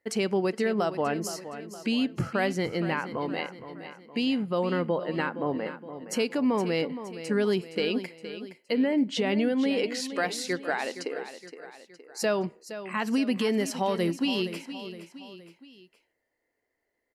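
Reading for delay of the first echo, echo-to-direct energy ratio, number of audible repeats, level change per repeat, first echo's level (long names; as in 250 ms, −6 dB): 467 ms, −11.0 dB, 3, −6.0 dB, −12.0 dB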